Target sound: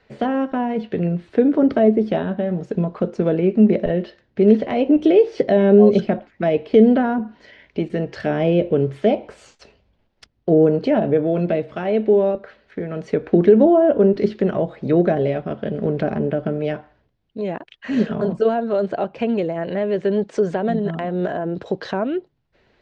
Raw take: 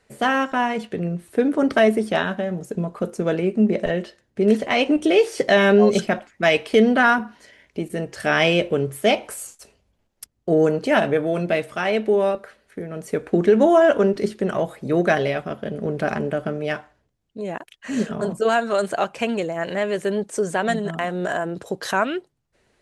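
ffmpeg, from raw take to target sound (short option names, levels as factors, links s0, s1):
-filter_complex "[0:a]lowpass=f=4500:w=0.5412,lowpass=f=4500:w=1.3066,bandreject=f=1200:w=27,acrossover=split=640[s0][s1];[s1]acompressor=threshold=0.0141:ratio=10[s2];[s0][s2]amix=inputs=2:normalize=0,volume=1.68"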